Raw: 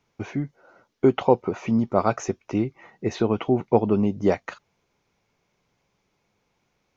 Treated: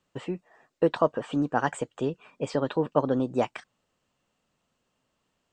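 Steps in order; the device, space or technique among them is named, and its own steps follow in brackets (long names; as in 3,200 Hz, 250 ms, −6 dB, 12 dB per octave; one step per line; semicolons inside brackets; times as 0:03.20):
nightcore (speed change +26%)
level −4.5 dB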